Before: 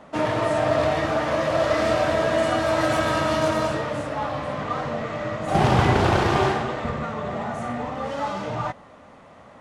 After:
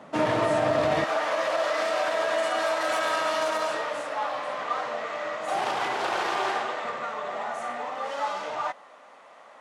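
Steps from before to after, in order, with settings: peak limiter -14.5 dBFS, peak gain reduction 8.5 dB; high-pass 130 Hz 12 dB/octave, from 1.04 s 610 Hz

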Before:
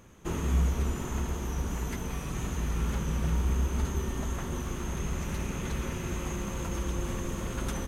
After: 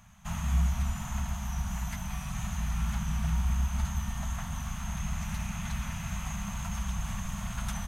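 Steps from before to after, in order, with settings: elliptic band-stop 210–680 Hz, stop band 50 dB

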